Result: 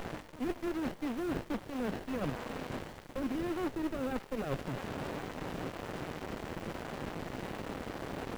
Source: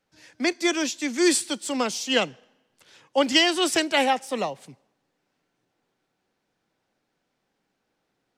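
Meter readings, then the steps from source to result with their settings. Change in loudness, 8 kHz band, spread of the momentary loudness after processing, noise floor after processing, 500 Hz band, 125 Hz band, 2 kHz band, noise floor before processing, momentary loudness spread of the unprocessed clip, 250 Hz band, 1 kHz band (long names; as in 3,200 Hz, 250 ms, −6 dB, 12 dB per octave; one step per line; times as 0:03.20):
−15.0 dB, −24.0 dB, 6 LU, −51 dBFS, −10.5 dB, +8.0 dB, −15.5 dB, −77 dBFS, 11 LU, −8.0 dB, −12.0 dB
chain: linear delta modulator 16 kbit/s, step −36 dBFS
brickwall limiter −23.5 dBFS, peak gain reduction 8.5 dB
reversed playback
downward compressor 8 to 1, threshold −39 dBFS, peak gain reduction 12 dB
reversed playback
harmonic generator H 4 −23 dB, 6 −32 dB, 7 −26 dB, 8 −26 dB, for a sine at −29.5 dBFS
in parallel at −11 dB: bit-depth reduction 8 bits, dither triangular
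on the sum: windowed peak hold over 33 samples
level +7 dB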